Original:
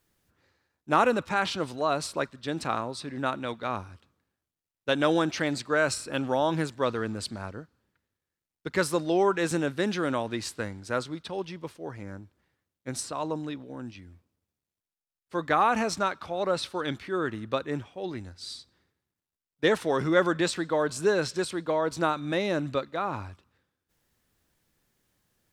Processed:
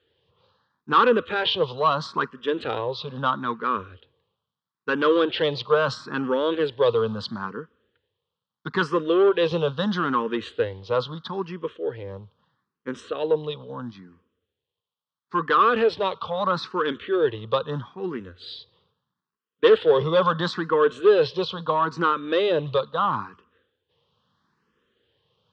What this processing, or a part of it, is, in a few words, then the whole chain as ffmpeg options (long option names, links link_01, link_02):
barber-pole phaser into a guitar amplifier: -filter_complex "[0:a]asplit=2[link_01][link_02];[link_02]afreqshift=0.76[link_03];[link_01][link_03]amix=inputs=2:normalize=1,asoftclip=type=tanh:threshold=-23dB,highpass=110,equalizer=frequency=300:width_type=q:width=4:gain=-7,equalizer=frequency=460:width_type=q:width=4:gain=9,equalizer=frequency=690:width_type=q:width=4:gain=-9,equalizer=frequency=1100:width_type=q:width=4:gain=8,equalizer=frequency=2200:width_type=q:width=4:gain=-10,equalizer=frequency=3200:width_type=q:width=4:gain=8,lowpass=frequency=4000:width=0.5412,lowpass=frequency=4000:width=1.3066,volume=8.5dB"